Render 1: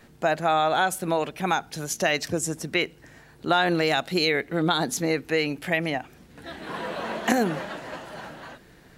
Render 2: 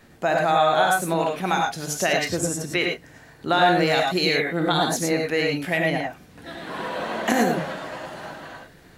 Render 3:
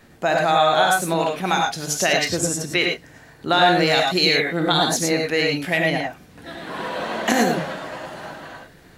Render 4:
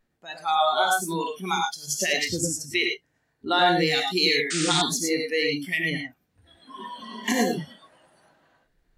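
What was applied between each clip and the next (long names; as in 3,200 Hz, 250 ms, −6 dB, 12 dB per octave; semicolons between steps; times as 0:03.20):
reverb whose tail is shaped and stops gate 130 ms rising, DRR 0.5 dB
dynamic equaliser 4,600 Hz, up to +5 dB, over −38 dBFS, Q 0.77; level +1.5 dB
noise reduction from a noise print of the clip's start 22 dB; sound drawn into the spectrogram noise, 0:04.50–0:04.82, 1,200–9,200 Hz −25 dBFS; level −3.5 dB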